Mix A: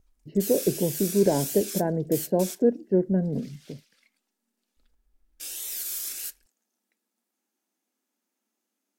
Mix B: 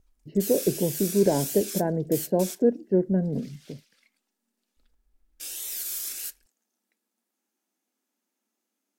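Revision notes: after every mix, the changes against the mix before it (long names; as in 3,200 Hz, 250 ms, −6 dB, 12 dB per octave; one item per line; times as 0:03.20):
nothing changed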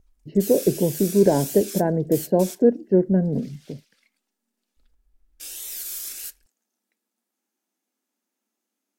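speech +4.5 dB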